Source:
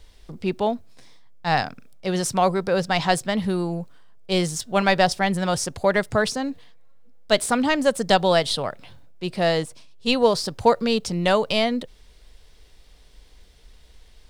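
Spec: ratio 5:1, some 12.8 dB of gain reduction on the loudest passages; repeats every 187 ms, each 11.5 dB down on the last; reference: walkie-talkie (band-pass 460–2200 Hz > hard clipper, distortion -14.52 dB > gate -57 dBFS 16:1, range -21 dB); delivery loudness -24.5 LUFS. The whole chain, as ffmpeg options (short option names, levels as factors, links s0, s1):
-af "acompressor=threshold=0.0447:ratio=5,highpass=460,lowpass=2200,aecho=1:1:187|374|561:0.266|0.0718|0.0194,asoftclip=type=hard:threshold=0.0501,agate=range=0.0891:threshold=0.00141:ratio=16,volume=3.76"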